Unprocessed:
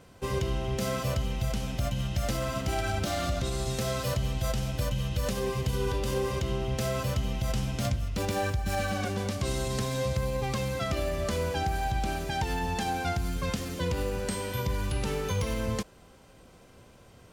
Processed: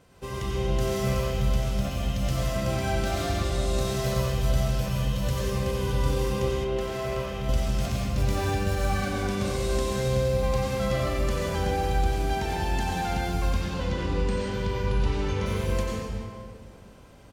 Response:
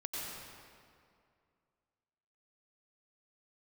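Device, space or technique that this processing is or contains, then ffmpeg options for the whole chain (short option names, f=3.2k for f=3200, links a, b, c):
stairwell: -filter_complex "[0:a]asettb=1/sr,asplit=3[a][b][c];[a]atrim=end=13.504[d];[b]atrim=start=13.5:end=15.46,asetpts=PTS-STARTPTS,afade=t=in:d=0.004:c=qsin,afade=t=out:st=1.956:d=0.004:c=qsin,lowpass=5.2k[e];[c]atrim=start=15.456[f];[d][e]acrossfade=d=0.004:c1=hsin:c2=qsin[g];[g][f]acrossfade=d=0.004:c1=qsin:c2=hsin[h];[1:a]atrim=start_sample=2205[i];[h][i]afir=irnorm=-1:irlink=0,asettb=1/sr,asplit=3[j][k][l];[j]atrim=end=6.644[m];[k]atrim=start=6.64:end=7.49,asetpts=PTS-STARTPTS,afade=t=in:d=0.004:c=qsin,afade=t=out:st=0.846:d=0.004:c=qsin,bass=f=250:g=-8,treble=f=4k:g=-8[n];[l]atrim=start=7.486[o];[m][n]acrossfade=d=0.004:c1=hsin:c2=qsin[p];[p][o]acrossfade=d=0.004:c1=qsin:c2=hsin,asplit=2[q][r];[r]adelay=40,volume=-13dB[s];[q][s]amix=inputs=2:normalize=0"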